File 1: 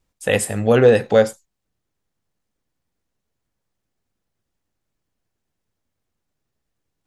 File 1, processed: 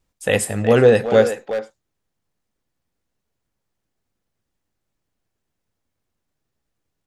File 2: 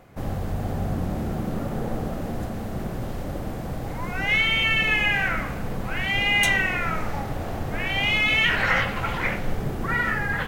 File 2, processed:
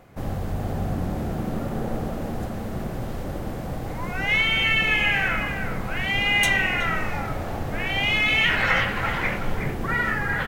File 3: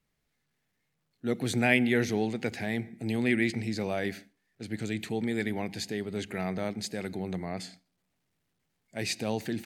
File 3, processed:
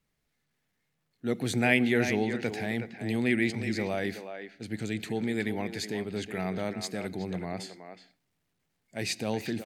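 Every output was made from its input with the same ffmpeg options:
-filter_complex "[0:a]asplit=2[a][b];[b]adelay=370,highpass=300,lowpass=3.4k,asoftclip=type=hard:threshold=-10dB,volume=-8dB[c];[a][c]amix=inputs=2:normalize=0"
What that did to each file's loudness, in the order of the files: 0.0, +0.5, +0.5 LU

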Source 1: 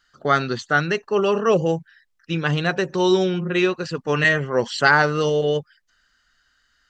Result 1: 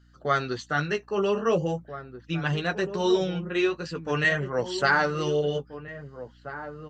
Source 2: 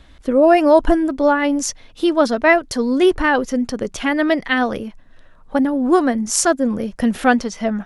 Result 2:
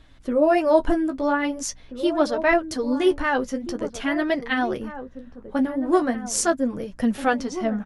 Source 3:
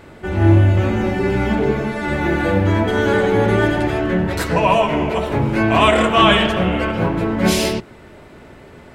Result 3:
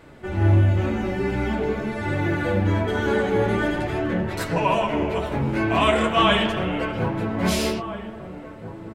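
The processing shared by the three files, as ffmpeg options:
-filter_complex "[0:a]flanger=delay=6.2:depth=9.7:regen=-25:speed=0.44:shape=triangular,aeval=exprs='val(0)+0.002*(sin(2*PI*60*n/s)+sin(2*PI*2*60*n/s)/2+sin(2*PI*3*60*n/s)/3+sin(2*PI*4*60*n/s)/4+sin(2*PI*5*60*n/s)/5)':c=same,asplit=2[a][b];[b]adelay=1633,volume=-11dB,highshelf=f=4k:g=-36.7[c];[a][c]amix=inputs=2:normalize=0,volume=-2.5dB"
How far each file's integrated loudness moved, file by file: -6.0, -6.0, -6.0 LU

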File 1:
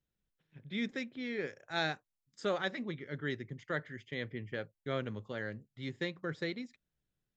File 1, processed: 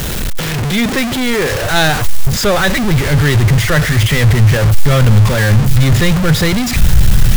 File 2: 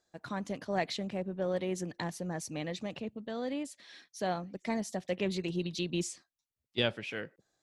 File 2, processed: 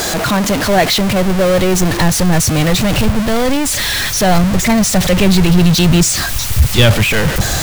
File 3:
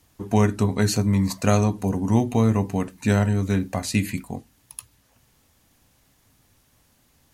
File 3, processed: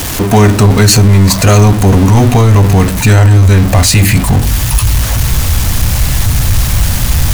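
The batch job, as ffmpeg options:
-filter_complex "[0:a]aeval=exprs='val(0)+0.5*0.0376*sgn(val(0))':c=same,asplit=2[a][b];[b]acrusher=bits=6:mix=0:aa=0.000001,volume=-10.5dB[c];[a][c]amix=inputs=2:normalize=0,asubboost=boost=8:cutoff=110,apsyclip=16.5dB,volume=-1.5dB"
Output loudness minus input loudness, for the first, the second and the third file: +26.5, +23.5, +14.0 LU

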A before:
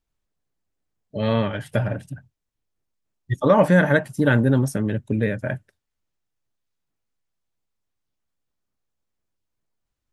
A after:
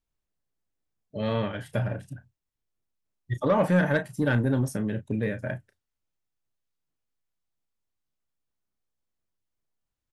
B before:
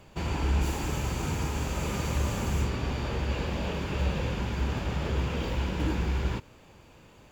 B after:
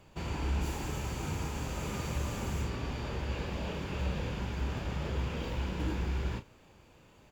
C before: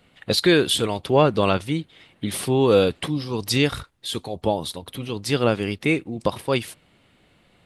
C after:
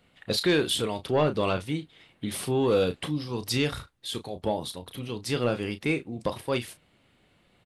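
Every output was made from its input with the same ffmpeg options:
-filter_complex "[0:a]asplit=2[a][b];[b]adelay=33,volume=-10.5dB[c];[a][c]amix=inputs=2:normalize=0,asoftclip=type=tanh:threshold=-8dB,volume=-5.5dB"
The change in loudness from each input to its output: -6.0, -5.5, -6.0 LU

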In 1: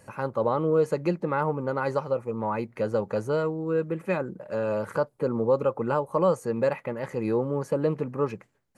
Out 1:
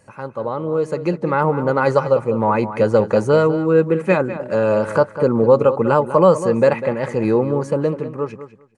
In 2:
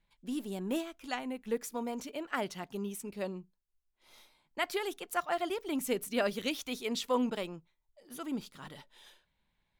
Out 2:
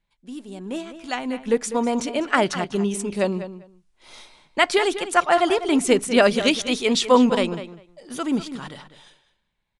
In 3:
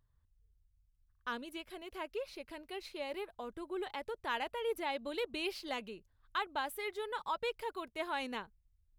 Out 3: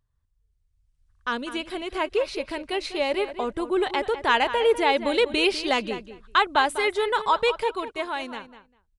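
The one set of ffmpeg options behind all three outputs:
-filter_complex "[0:a]dynaudnorm=f=120:g=21:m=16dB,asplit=2[a][b];[b]adelay=199,lowpass=f=3.9k:p=1,volume=-12dB,asplit=2[c][d];[d]adelay=199,lowpass=f=3.9k:p=1,volume=0.16[e];[a][c][e]amix=inputs=3:normalize=0,aresample=22050,aresample=44100"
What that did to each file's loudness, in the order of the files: +10.0, +14.5, +15.5 LU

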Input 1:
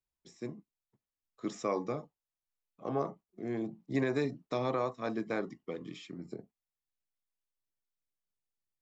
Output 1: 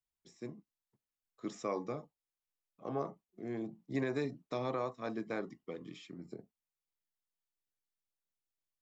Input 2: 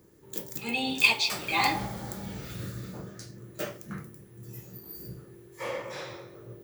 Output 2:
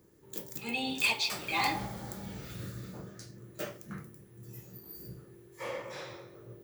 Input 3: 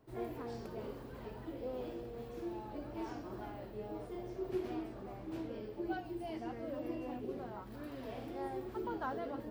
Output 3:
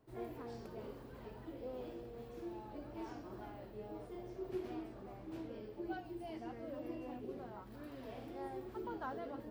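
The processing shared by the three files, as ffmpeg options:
-af "asoftclip=type=hard:threshold=-18.5dB,volume=-4dB"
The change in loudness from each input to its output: -4.0, -6.0, -4.0 LU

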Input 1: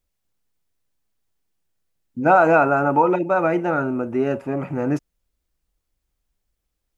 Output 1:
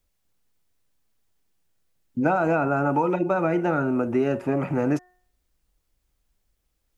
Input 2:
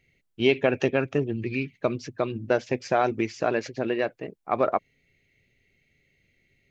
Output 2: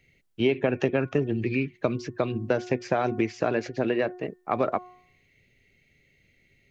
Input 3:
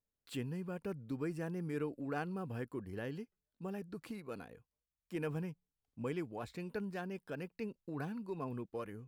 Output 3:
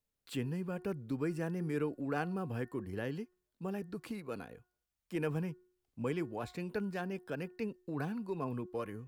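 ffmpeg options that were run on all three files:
-filter_complex "[0:a]bandreject=f=362.5:t=h:w=4,bandreject=f=725:t=h:w=4,bandreject=f=1.0875k:t=h:w=4,bandreject=f=1.45k:t=h:w=4,bandreject=f=1.8125k:t=h:w=4,acrossover=split=300|2500[a][b][c];[a]acompressor=threshold=-29dB:ratio=4[d];[b]acompressor=threshold=-27dB:ratio=4[e];[c]acompressor=threshold=-48dB:ratio=4[f];[d][e][f]amix=inputs=3:normalize=0,volume=3.5dB"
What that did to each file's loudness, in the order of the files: -4.0, -1.0, +3.5 LU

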